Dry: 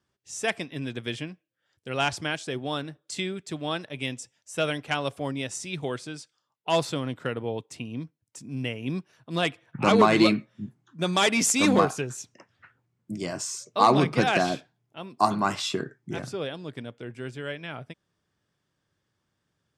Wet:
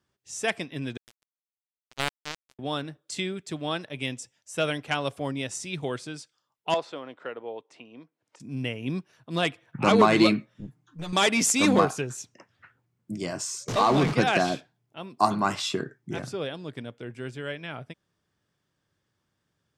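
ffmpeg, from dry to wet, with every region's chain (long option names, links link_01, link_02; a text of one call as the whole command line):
ffmpeg -i in.wav -filter_complex "[0:a]asettb=1/sr,asplit=3[link_01][link_02][link_03];[link_01]atrim=end=0.974[link_04];[link_02]atrim=start=0.97:end=2.59,asetpts=PTS-STARTPTS,afade=type=in:duration=0.004:curve=qsin,afade=type=out:start_time=1.616:duration=0.004:curve=qsin,lowpass=frequency=3600:poles=1,acrusher=bits=2:mix=0:aa=0.5[link_05];[link_03]atrim=start=2.586[link_06];[link_04][link_05]acrossfade=duration=0.004:curve1=hsin:curve2=qsin[link_07];[link_07][link_06]acrossfade=duration=0.004:curve1=qsin:curve2=hsin,asettb=1/sr,asplit=3[link_08][link_09][link_10];[link_08]atrim=end=6.744[link_11];[link_09]atrim=start=6.74:end=8.4,asetpts=PTS-STARTPTS,afade=type=in:duration=0.004:curve=qsin,afade=type=out:start_time=1.656:duration=0.004:curve=qsin,equalizer=frequency=2500:width_type=o:width=2.8:gain=-6,acompressor=mode=upward:threshold=-40dB:ratio=2.5:attack=3.2:release=140:knee=2.83:detection=peak,highpass=510,lowpass=3200[link_12];[link_10]atrim=start=8.396[link_13];[link_11][link_12]acrossfade=duration=0.004:curve1=hsin:curve2=qsin[link_14];[link_14][link_13]acrossfade=duration=0.004:curve1=qsin:curve2=hsin,asettb=1/sr,asplit=3[link_15][link_16][link_17];[link_15]atrim=end=10.544[link_18];[link_16]atrim=start=10.54:end=11.13,asetpts=PTS-STARTPTS,afade=type=in:duration=0.004:curve=qsin,afade=type=out:start_time=0.586:duration=0.004:curve=qsin,aecho=1:1:6.6:0.99,atrim=end_sample=26019,acompressor=threshold=-28dB:ratio=6:attack=3.2:release=140:knee=1:detection=peak,aeval=exprs='(tanh(25.1*val(0)+0.6)-tanh(0.6))/25.1':channel_layout=same[link_19];[link_17]atrim=start=11.126[link_20];[link_18][link_19]acrossfade=duration=0.004:curve1=hsin:curve2=qsin[link_21];[link_21][link_20]acrossfade=duration=0.004:curve1=qsin:curve2=hsin,asettb=1/sr,asplit=3[link_22][link_23][link_24];[link_22]atrim=end=13.684[link_25];[link_23]atrim=start=13.68:end=14.13,asetpts=PTS-STARTPTS,afade=type=in:duration=0.004:curve=qsin,afade=type=out:start_time=0.446:duration=0.004:curve=qsin,aeval=exprs='val(0)+0.5*0.0668*sgn(val(0))':channel_layout=same,lowpass=6900,acompressor=threshold=-18dB:ratio=2.5:attack=3.2:release=140:knee=1:detection=peak[link_26];[link_24]atrim=start=14.126[link_27];[link_25][link_26]acrossfade=duration=0.004:curve1=hsin:curve2=qsin[link_28];[link_28][link_27]acrossfade=duration=0.004:curve1=qsin:curve2=hsin" out.wav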